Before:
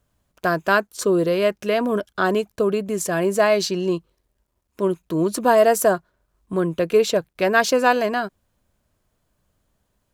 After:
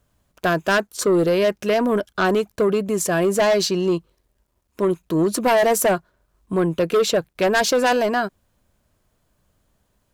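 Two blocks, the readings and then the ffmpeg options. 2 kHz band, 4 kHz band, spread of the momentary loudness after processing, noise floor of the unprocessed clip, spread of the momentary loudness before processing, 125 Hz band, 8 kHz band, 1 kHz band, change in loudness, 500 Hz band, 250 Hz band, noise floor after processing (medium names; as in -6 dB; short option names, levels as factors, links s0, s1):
-0.5 dB, +3.0 dB, 6 LU, -73 dBFS, 8 LU, +2.0 dB, +3.0 dB, -0.5 dB, +0.5 dB, +0.5 dB, +1.5 dB, -70 dBFS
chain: -af "aeval=exprs='0.596*(cos(1*acos(clip(val(0)/0.596,-1,1)))-cos(1*PI/2))+0.211*(cos(5*acos(clip(val(0)/0.596,-1,1)))-cos(5*PI/2))':c=same,volume=0.531"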